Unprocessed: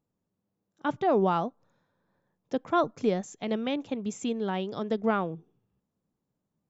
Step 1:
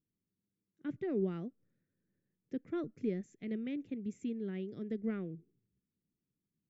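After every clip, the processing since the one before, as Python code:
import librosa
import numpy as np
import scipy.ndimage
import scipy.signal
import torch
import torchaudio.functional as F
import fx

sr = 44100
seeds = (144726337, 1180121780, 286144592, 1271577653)

y = fx.curve_eq(x, sr, hz=(370.0, 920.0, 2000.0, 3200.0), db=(0, -28, -2, -14))
y = F.gain(torch.from_numpy(y), -6.5).numpy()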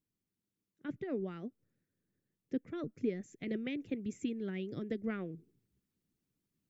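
y = fx.hpss(x, sr, part='percussive', gain_db=9)
y = fx.rider(y, sr, range_db=10, speed_s=0.5)
y = F.gain(torch.from_numpy(y), -2.5).numpy()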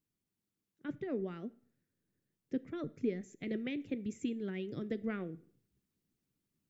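y = fx.rev_plate(x, sr, seeds[0], rt60_s=0.54, hf_ratio=0.9, predelay_ms=0, drr_db=16.5)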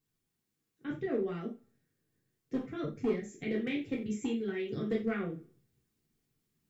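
y = np.clip(x, -10.0 ** (-28.0 / 20.0), 10.0 ** (-28.0 / 20.0))
y = fx.rev_gated(y, sr, seeds[1], gate_ms=120, shape='falling', drr_db=-4.0)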